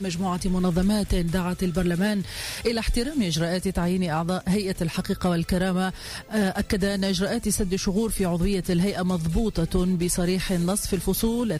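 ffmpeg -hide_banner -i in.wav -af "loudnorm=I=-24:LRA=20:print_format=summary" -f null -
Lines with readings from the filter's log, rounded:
Input Integrated:    -24.8 LUFS
Input True Peak:     -11.4 dBTP
Input LRA:             1.1 LU
Input Threshold:     -34.8 LUFS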